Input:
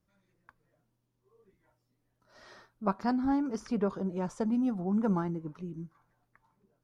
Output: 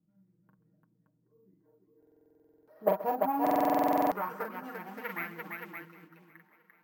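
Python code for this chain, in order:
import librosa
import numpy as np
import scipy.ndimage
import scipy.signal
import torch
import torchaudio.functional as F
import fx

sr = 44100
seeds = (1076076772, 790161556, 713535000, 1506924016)

p1 = fx.tracing_dist(x, sr, depth_ms=0.33)
p2 = fx.peak_eq(p1, sr, hz=3500.0, db=-7.0, octaves=0.21)
p3 = p2 + 0.69 * np.pad(p2, (int(6.4 * sr / 1000.0), 0))[:len(p2)]
p4 = fx.rider(p3, sr, range_db=3, speed_s=0.5)
p5 = p3 + F.gain(torch.from_numpy(p4), -3.0).numpy()
p6 = fx.quant_float(p5, sr, bits=4, at=(4.65, 5.74))
p7 = fx.echo_multitap(p6, sr, ms=(42, 132, 343, 571), db=(-5.0, -18.0, -3.5, -6.0))
p8 = fx.filter_sweep_bandpass(p7, sr, from_hz=210.0, to_hz=2000.0, start_s=1.29, end_s=5.03, q=2.7)
p9 = np.repeat(p8[::3], 3)[:len(p8)]
p10 = p9 + fx.echo_feedback(p9, sr, ms=775, feedback_pct=40, wet_db=-23.0, dry=0)
p11 = fx.buffer_glitch(p10, sr, at_s=(1.98, 3.42), block=2048, repeats=14)
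y = F.gain(torch.from_numpy(p11), 2.5).numpy()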